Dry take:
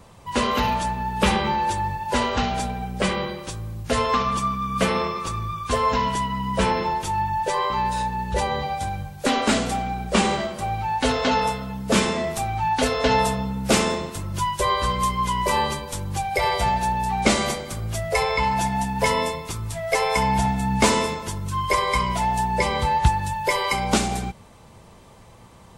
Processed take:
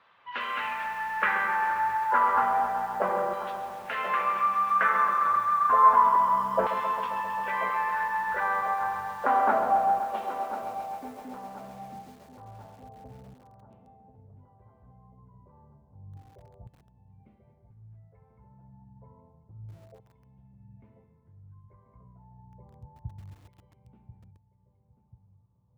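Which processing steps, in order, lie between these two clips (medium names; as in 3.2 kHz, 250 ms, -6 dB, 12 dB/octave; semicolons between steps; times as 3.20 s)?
LFO band-pass saw down 0.3 Hz 620–3700 Hz; in parallel at -2.5 dB: compression 10:1, threshold -41 dBFS, peak gain reduction 21 dB; on the sum: low-pass sweep 1.5 kHz -> 110 Hz, 9.46–12.08 s; filtered feedback delay 1038 ms, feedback 53%, low-pass 1.1 kHz, level -11 dB; bit-crushed delay 133 ms, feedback 80%, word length 8-bit, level -11 dB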